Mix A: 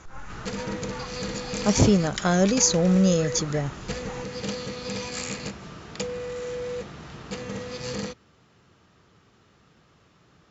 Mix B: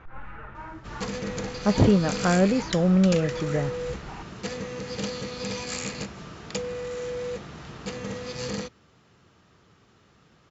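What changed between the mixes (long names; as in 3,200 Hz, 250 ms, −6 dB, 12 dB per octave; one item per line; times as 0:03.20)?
speech: add low-pass filter 2,900 Hz 24 dB per octave
background: entry +0.55 s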